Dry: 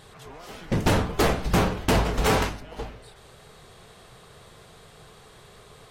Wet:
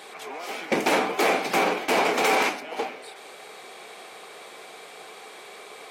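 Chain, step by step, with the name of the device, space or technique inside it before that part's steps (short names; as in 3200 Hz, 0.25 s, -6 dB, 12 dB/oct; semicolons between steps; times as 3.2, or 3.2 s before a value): laptop speaker (HPF 280 Hz 24 dB/oct; bell 770 Hz +6 dB 0.2 oct; bell 2300 Hz +11 dB 0.22 oct; limiter -18 dBFS, peak gain reduction 11 dB); gain +6.5 dB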